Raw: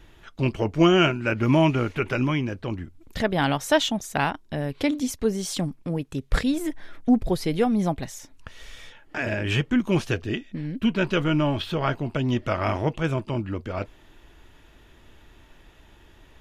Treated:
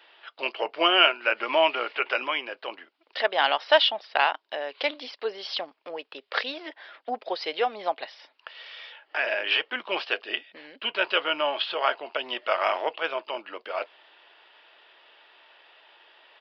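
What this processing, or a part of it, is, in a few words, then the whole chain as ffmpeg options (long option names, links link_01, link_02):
musical greeting card: -af "aresample=11025,aresample=44100,highpass=frequency=540:width=0.5412,highpass=frequency=540:width=1.3066,equalizer=frequency=2900:width_type=o:width=0.26:gain=5.5,volume=2.5dB"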